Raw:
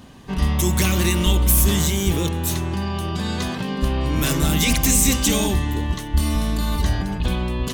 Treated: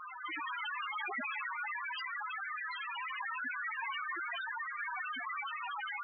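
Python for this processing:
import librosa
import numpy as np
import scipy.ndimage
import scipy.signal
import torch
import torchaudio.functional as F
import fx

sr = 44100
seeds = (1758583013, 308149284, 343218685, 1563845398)

p1 = np.r_[np.sort(x[:len(x) // 256 * 256].reshape(-1, 256), axis=1).ravel(), x[len(x) // 256 * 256:]]
p2 = fx.noise_vocoder(p1, sr, seeds[0], bands=1)
p3 = fx.lowpass(p2, sr, hz=1200.0, slope=6)
p4 = fx.stretch_vocoder(p3, sr, factor=1.5)
p5 = p4 + fx.echo_thinned(p4, sr, ms=1000, feedback_pct=51, hz=830.0, wet_db=-9, dry=0)
p6 = fx.stretch_grains(p5, sr, factor=0.52, grain_ms=25.0)
p7 = scipy.signal.sosfilt(scipy.signal.butter(2, 320.0, 'highpass', fs=sr, output='sos'), p6)
p8 = fx.peak_eq(p7, sr, hz=520.0, db=-9.5, octaves=1.5)
p9 = fx.spec_topn(p8, sr, count=2)
p10 = fx.env_flatten(p9, sr, amount_pct=70)
y = p10 * 10.0 ** (3.0 / 20.0)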